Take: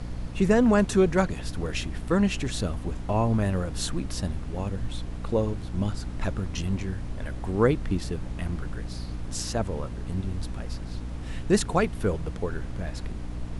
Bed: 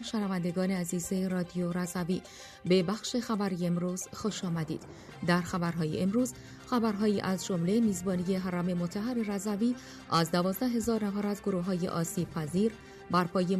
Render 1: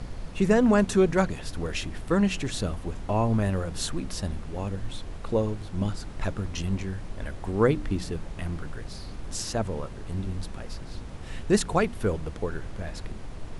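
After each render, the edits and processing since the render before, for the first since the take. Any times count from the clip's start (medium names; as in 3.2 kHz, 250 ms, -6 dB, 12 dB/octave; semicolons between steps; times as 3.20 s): de-hum 60 Hz, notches 5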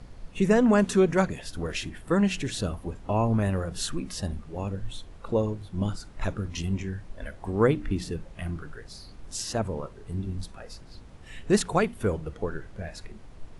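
noise print and reduce 9 dB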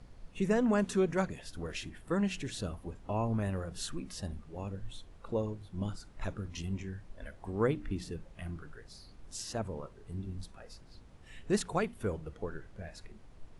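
trim -8 dB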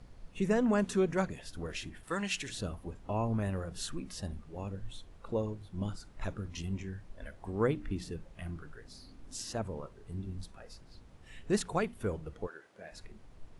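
2.03–2.49 s: tilt shelf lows -8 dB, about 840 Hz; 8.82–9.51 s: peaking EQ 260 Hz +11 dB 0.36 oct; 12.46–12.91 s: high-pass 650 Hz -> 250 Hz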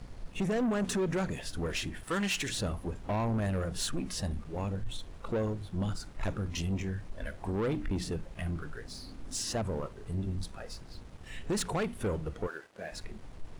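peak limiter -25 dBFS, peak gain reduction 8.5 dB; waveshaping leveller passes 2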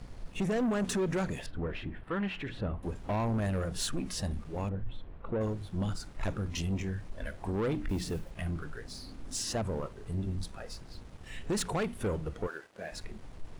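1.46–2.83 s: distance through air 490 m; 4.69–5.41 s: distance through air 500 m; 7.89–8.32 s: block-companded coder 5-bit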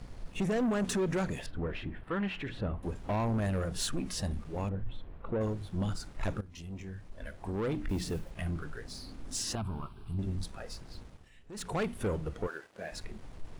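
6.41–8.00 s: fade in, from -16 dB; 9.55–10.19 s: static phaser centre 1.9 kHz, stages 6; 11.02–11.80 s: dip -16.5 dB, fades 0.28 s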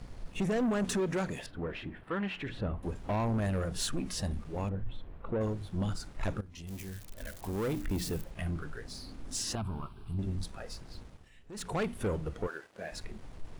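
1.00–2.42 s: bass shelf 81 Hz -11 dB; 6.67–8.24 s: zero-crossing glitches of -35.5 dBFS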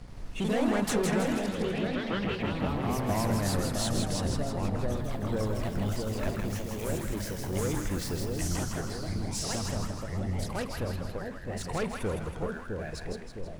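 ever faster or slower copies 82 ms, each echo +2 st, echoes 3; two-band feedback delay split 780 Hz, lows 660 ms, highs 161 ms, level -4 dB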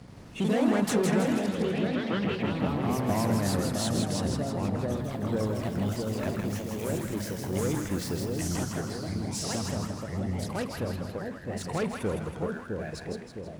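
Bessel high-pass 160 Hz, order 2; bass shelf 300 Hz +7.5 dB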